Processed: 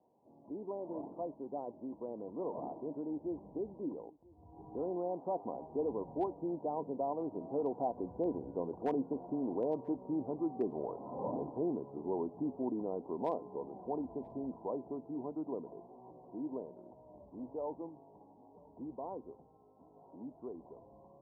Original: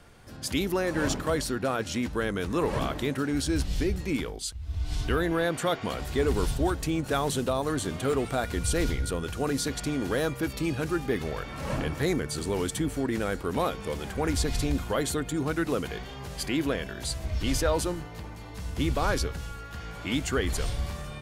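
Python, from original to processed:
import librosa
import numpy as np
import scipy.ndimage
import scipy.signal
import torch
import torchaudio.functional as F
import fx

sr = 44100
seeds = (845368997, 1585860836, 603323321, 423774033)

y = fx.doppler_pass(x, sr, speed_mps=23, closest_m=28.0, pass_at_s=8.82)
y = scipy.signal.sosfilt(scipy.signal.butter(2, 300.0, 'highpass', fs=sr, output='sos'), y)
y = fx.rider(y, sr, range_db=4, speed_s=0.5)
y = scipy.signal.sosfilt(scipy.signal.cheby1(6, 3, 1000.0, 'lowpass', fs=sr, output='sos'), y)
y = np.clip(y, -10.0 ** (-28.0 / 20.0), 10.0 ** (-28.0 / 20.0))
y = y + 10.0 ** (-24.0 / 20.0) * np.pad(y, (int(985 * sr / 1000.0), 0))[:len(y)]
y = y * 10.0 ** (3.0 / 20.0)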